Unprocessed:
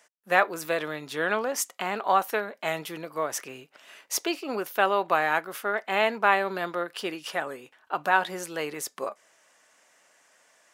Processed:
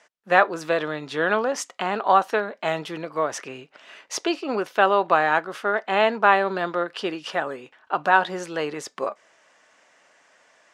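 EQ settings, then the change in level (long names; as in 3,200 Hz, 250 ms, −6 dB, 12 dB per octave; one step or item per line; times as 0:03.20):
dynamic equaliser 2,200 Hz, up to −6 dB, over −46 dBFS, Q 4.1
high-frequency loss of the air 96 metres
+5.5 dB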